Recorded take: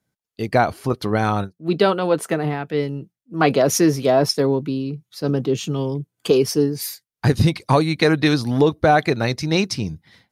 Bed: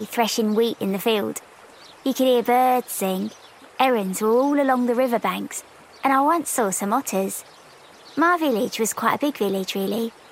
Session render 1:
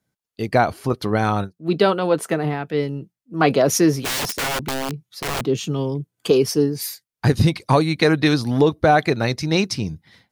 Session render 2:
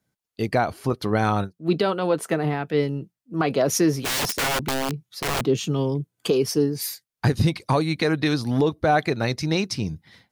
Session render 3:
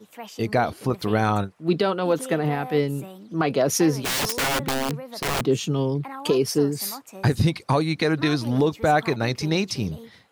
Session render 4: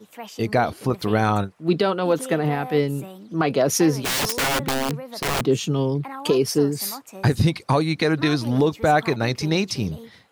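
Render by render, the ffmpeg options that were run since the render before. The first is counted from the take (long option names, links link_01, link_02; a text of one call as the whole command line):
ffmpeg -i in.wav -filter_complex "[0:a]asplit=3[link_01][link_02][link_03];[link_01]afade=type=out:start_time=4.04:duration=0.02[link_04];[link_02]aeval=exprs='(mod(8.91*val(0)+1,2)-1)/8.91':channel_layout=same,afade=type=in:start_time=4.04:duration=0.02,afade=type=out:start_time=5.41:duration=0.02[link_05];[link_03]afade=type=in:start_time=5.41:duration=0.02[link_06];[link_04][link_05][link_06]amix=inputs=3:normalize=0" out.wav
ffmpeg -i in.wav -af "alimiter=limit=-10.5dB:level=0:latency=1:release=406" out.wav
ffmpeg -i in.wav -i bed.wav -filter_complex "[1:a]volume=-18dB[link_01];[0:a][link_01]amix=inputs=2:normalize=0" out.wav
ffmpeg -i in.wav -af "volume=1.5dB" out.wav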